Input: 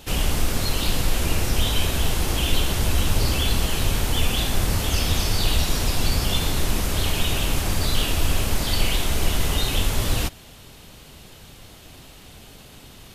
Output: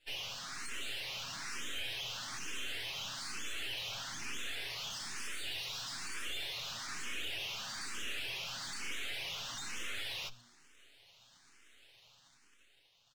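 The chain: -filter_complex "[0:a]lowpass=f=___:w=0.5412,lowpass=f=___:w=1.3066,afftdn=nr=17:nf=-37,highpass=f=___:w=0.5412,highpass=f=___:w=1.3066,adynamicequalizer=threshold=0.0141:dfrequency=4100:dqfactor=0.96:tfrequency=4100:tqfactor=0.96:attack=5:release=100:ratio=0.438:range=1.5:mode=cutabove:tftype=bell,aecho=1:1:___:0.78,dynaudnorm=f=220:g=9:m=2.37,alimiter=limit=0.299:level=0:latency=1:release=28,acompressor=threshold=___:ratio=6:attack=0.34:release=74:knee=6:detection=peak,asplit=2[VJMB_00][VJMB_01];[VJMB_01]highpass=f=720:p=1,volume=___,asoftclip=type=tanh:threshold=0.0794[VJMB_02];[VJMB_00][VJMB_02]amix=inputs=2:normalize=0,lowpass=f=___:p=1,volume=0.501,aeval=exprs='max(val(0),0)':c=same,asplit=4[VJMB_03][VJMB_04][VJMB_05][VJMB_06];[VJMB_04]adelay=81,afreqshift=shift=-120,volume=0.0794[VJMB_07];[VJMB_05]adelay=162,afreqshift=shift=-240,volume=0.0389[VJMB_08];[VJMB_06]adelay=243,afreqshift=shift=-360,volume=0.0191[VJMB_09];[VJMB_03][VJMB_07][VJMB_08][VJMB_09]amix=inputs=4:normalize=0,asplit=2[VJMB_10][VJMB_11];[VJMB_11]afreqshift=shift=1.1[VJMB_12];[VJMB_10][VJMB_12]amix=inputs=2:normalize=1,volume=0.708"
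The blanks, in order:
6600, 6600, 1500, 1500, 7.3, 0.0398, 3.98, 3600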